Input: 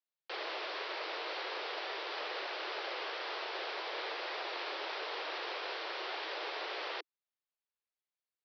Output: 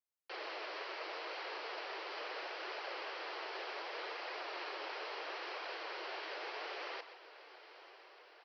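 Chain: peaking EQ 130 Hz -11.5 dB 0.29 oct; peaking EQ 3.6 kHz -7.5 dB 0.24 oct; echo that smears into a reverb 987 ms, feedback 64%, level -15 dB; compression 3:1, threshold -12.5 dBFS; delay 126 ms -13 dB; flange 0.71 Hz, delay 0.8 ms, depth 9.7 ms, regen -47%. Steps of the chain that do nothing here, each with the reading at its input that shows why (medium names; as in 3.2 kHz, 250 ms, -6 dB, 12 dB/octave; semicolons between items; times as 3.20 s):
peaking EQ 130 Hz: input has nothing below 270 Hz; compression, threshold -12.5 dBFS: peak at its input -27.0 dBFS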